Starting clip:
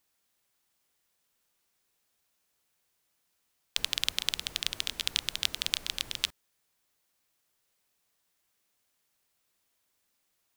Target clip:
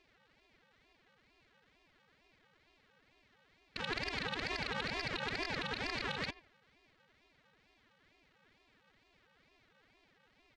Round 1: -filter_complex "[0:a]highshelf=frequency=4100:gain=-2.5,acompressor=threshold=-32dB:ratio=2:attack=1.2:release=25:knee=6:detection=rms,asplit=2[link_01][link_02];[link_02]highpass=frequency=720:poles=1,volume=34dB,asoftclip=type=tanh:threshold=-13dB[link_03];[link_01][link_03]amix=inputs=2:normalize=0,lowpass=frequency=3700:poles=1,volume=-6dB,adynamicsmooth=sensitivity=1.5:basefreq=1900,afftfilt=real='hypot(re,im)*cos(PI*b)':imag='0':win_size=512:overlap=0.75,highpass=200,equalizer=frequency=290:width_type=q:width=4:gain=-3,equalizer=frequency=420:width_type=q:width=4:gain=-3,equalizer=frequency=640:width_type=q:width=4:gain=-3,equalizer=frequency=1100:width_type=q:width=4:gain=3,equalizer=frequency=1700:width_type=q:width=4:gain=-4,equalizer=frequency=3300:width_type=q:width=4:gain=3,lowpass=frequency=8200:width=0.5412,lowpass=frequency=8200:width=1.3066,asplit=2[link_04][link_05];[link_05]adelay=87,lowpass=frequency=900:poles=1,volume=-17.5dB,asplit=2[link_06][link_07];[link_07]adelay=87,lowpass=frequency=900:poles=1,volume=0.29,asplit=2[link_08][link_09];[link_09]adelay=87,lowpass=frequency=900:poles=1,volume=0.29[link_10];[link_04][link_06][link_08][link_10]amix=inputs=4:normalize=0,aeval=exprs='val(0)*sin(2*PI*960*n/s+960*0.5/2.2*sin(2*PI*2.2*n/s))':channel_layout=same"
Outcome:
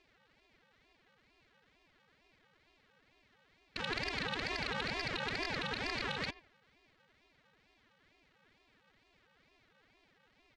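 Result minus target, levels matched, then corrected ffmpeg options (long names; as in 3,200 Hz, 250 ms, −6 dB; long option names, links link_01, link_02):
downward compressor: peak gain reduction −3.5 dB
-filter_complex "[0:a]highshelf=frequency=4100:gain=-2.5,acompressor=threshold=-39dB:ratio=2:attack=1.2:release=25:knee=6:detection=rms,asplit=2[link_01][link_02];[link_02]highpass=frequency=720:poles=1,volume=34dB,asoftclip=type=tanh:threshold=-13dB[link_03];[link_01][link_03]amix=inputs=2:normalize=0,lowpass=frequency=3700:poles=1,volume=-6dB,adynamicsmooth=sensitivity=1.5:basefreq=1900,afftfilt=real='hypot(re,im)*cos(PI*b)':imag='0':win_size=512:overlap=0.75,highpass=200,equalizer=frequency=290:width_type=q:width=4:gain=-3,equalizer=frequency=420:width_type=q:width=4:gain=-3,equalizer=frequency=640:width_type=q:width=4:gain=-3,equalizer=frequency=1100:width_type=q:width=4:gain=3,equalizer=frequency=1700:width_type=q:width=4:gain=-4,equalizer=frequency=3300:width_type=q:width=4:gain=3,lowpass=frequency=8200:width=0.5412,lowpass=frequency=8200:width=1.3066,asplit=2[link_04][link_05];[link_05]adelay=87,lowpass=frequency=900:poles=1,volume=-17.5dB,asplit=2[link_06][link_07];[link_07]adelay=87,lowpass=frequency=900:poles=1,volume=0.29,asplit=2[link_08][link_09];[link_09]adelay=87,lowpass=frequency=900:poles=1,volume=0.29[link_10];[link_04][link_06][link_08][link_10]amix=inputs=4:normalize=0,aeval=exprs='val(0)*sin(2*PI*960*n/s+960*0.5/2.2*sin(2*PI*2.2*n/s))':channel_layout=same"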